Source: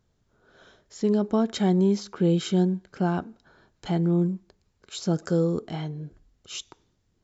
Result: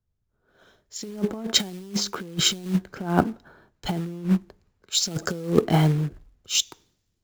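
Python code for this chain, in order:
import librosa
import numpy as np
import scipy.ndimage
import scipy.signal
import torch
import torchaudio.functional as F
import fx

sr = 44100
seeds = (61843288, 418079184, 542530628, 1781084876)

y = fx.over_compress(x, sr, threshold_db=-28.0, ratio=-0.5)
y = fx.quant_float(y, sr, bits=2)
y = fx.band_widen(y, sr, depth_pct=70)
y = F.gain(torch.from_numpy(y), 4.0).numpy()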